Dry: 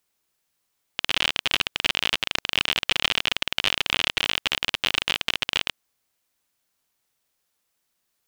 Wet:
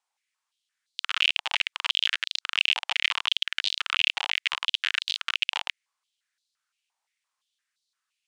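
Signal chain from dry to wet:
low-pass filter 9,300 Hz 24 dB per octave
high-pass on a step sequencer 5.8 Hz 840–4,100 Hz
level −7.5 dB

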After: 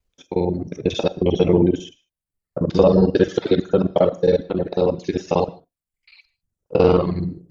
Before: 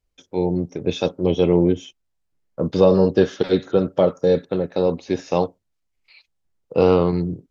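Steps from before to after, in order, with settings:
reversed piece by piece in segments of 45 ms
reverb whose tail is shaped and stops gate 170 ms flat, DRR 7.5 dB
reverb reduction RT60 0.84 s
level +1.5 dB

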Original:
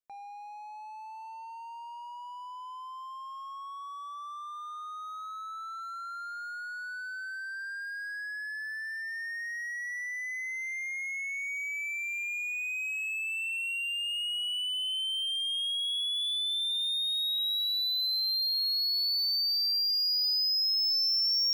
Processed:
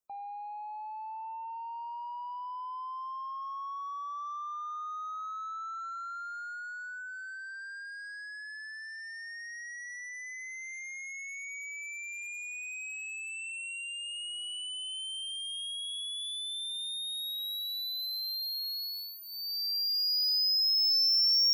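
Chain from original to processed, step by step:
gate on every frequency bin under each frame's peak −30 dB strong
flat-topped bell 2,600 Hz −10 dB
notch filter 4,500 Hz, Q 11
level +3.5 dB

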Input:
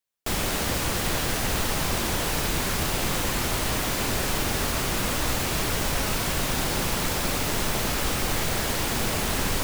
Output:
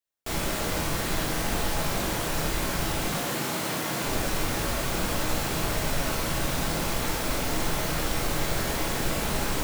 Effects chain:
0:03.04–0:04.04: high-pass filter 120 Hz 24 dB per octave
convolution reverb RT60 0.60 s, pre-delay 12 ms, DRR −1.5 dB
level −6 dB

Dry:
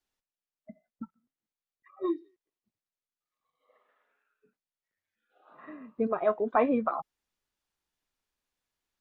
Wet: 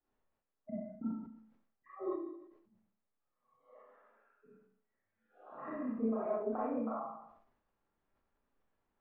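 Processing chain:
downward compressor 6 to 1, threshold −44 dBFS, peak gain reduction 22.5 dB
low-pass filter 1,200 Hz 12 dB per octave
four-comb reverb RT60 0.61 s, combs from 28 ms, DRR −8.5 dB
level that may fall only so fast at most 73 dB per second

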